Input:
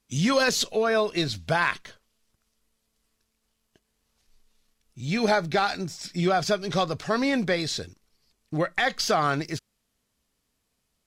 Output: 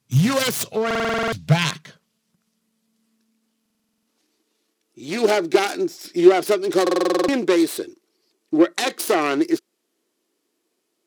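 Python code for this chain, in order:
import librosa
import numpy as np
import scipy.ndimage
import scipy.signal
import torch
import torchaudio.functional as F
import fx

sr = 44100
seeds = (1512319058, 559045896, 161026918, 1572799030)

y = fx.self_delay(x, sr, depth_ms=0.29)
y = fx.filter_sweep_highpass(y, sr, from_hz=120.0, to_hz=340.0, start_s=0.92, end_s=4.73, q=6.9)
y = fx.buffer_glitch(y, sr, at_s=(0.86, 3.61, 6.82), block=2048, repeats=9)
y = y * librosa.db_to_amplitude(1.5)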